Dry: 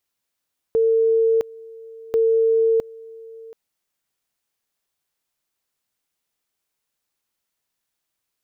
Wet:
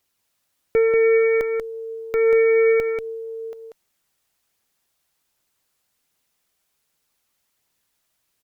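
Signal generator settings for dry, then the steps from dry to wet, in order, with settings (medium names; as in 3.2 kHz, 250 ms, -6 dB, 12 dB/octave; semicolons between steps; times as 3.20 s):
two-level tone 451 Hz -14 dBFS, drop 22.5 dB, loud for 0.66 s, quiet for 0.73 s, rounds 2
Chebyshev shaper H 4 -22 dB, 5 -14 dB, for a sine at -13.5 dBFS; phaser 1.3 Hz, delay 1.8 ms, feedback 24%; on a send: delay 188 ms -5 dB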